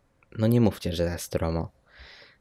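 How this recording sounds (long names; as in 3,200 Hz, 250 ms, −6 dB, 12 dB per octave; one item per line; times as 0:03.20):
background noise floor −67 dBFS
spectral slope −7.0 dB per octave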